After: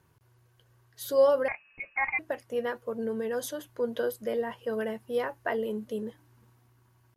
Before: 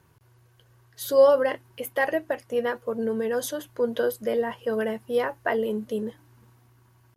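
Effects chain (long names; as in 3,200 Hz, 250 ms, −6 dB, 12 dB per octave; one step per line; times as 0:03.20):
0:01.48–0:02.19: voice inversion scrambler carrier 2,700 Hz
level −5 dB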